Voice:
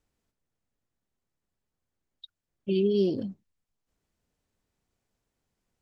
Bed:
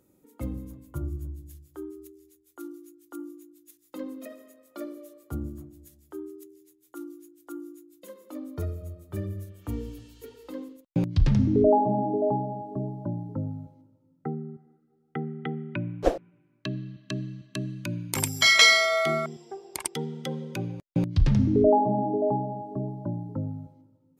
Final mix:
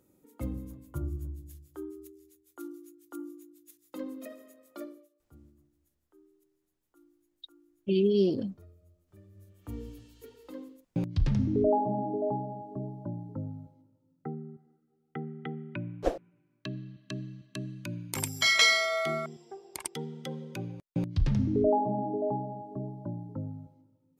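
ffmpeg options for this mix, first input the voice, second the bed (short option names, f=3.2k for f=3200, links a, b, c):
-filter_complex "[0:a]adelay=5200,volume=0dB[a];[1:a]volume=15.5dB,afade=t=out:st=4.71:d=0.38:silence=0.0891251,afade=t=in:st=9.31:d=0.54:silence=0.133352[b];[a][b]amix=inputs=2:normalize=0"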